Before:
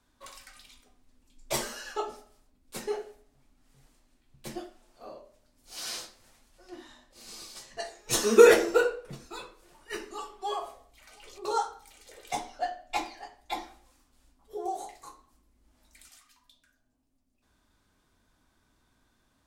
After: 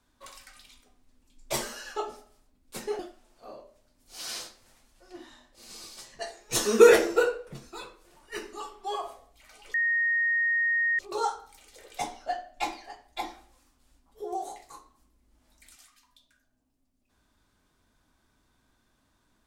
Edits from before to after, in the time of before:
0:02.99–0:04.57: remove
0:11.32: insert tone 1,860 Hz −22.5 dBFS 1.25 s

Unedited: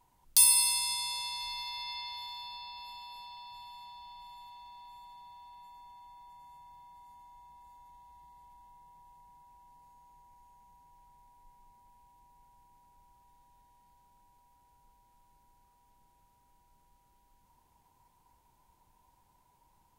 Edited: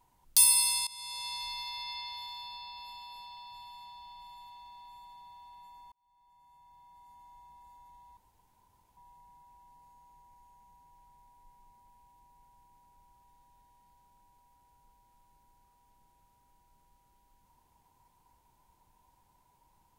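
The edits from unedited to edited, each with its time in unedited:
0:00.87–0:01.32: fade in, from −19.5 dB
0:05.92–0:07.31: fade in
0:08.17–0:08.97: fill with room tone

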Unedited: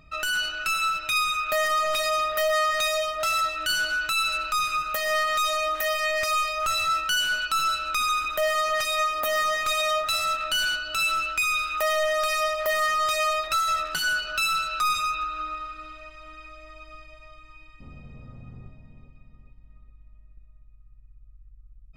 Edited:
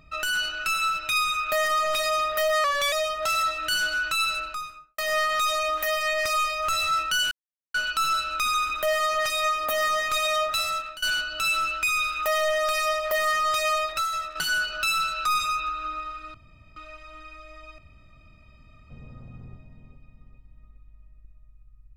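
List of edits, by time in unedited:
0:02.64–0:02.90: play speed 92%
0:04.20–0:04.96: fade out and dull
0:07.29: splice in silence 0.43 s
0:10.02–0:10.57: fade out equal-power, to −22 dB
0:13.33–0:13.90: fade out, to −8.5 dB
0:15.89: splice in room tone 0.42 s
0:16.91–0:18.03: fill with room tone

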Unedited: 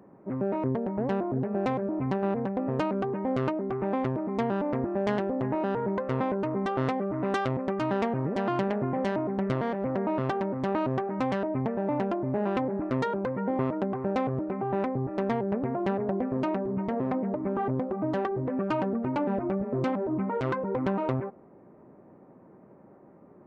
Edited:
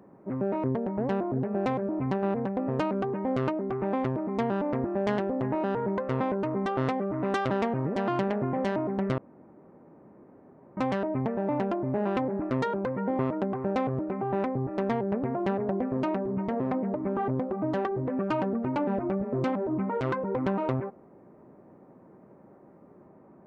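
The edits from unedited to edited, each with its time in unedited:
0:07.50–0:07.90: remove
0:09.58–0:11.17: fill with room tone

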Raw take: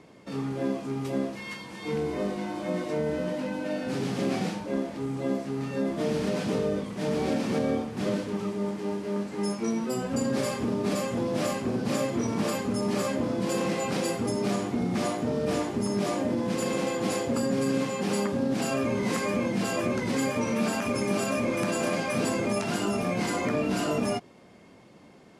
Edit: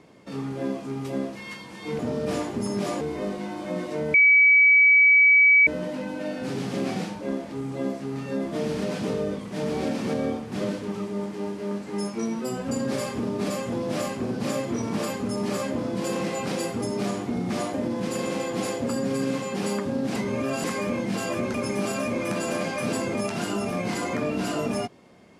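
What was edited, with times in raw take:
0:03.12: insert tone 2,280 Hz −12.5 dBFS 1.53 s
0:15.19–0:16.21: move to 0:01.99
0:18.63–0:19.11: reverse
0:20.01–0:20.86: remove

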